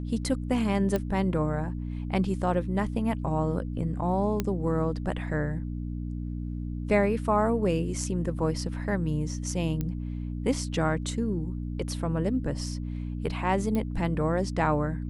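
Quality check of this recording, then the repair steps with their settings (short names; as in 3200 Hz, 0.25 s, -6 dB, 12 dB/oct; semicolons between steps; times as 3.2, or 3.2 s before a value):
hum 60 Hz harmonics 5 -33 dBFS
0.96 pop -15 dBFS
4.4 pop -13 dBFS
9.81 pop -18 dBFS
13.75 pop -18 dBFS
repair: de-click; de-hum 60 Hz, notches 5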